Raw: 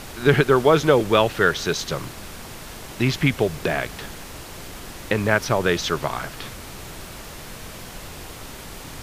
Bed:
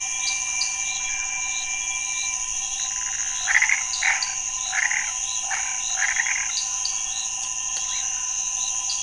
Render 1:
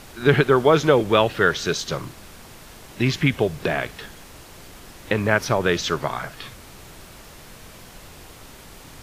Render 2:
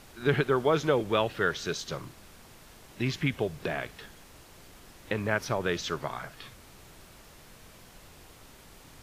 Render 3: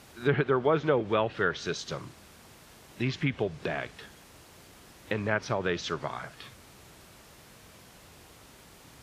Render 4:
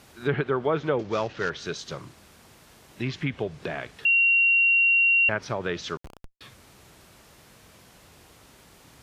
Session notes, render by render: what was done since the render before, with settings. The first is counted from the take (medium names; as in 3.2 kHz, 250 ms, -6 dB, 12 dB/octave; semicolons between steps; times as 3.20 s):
noise print and reduce 6 dB
trim -9 dB
high-pass 56 Hz; low-pass that closes with the level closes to 2.5 kHz, closed at -21.5 dBFS
0.99–1.50 s: CVSD coder 32 kbps; 4.05–5.29 s: bleep 2.75 kHz -16.5 dBFS; 5.97–6.41 s: Schmitt trigger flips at -26.5 dBFS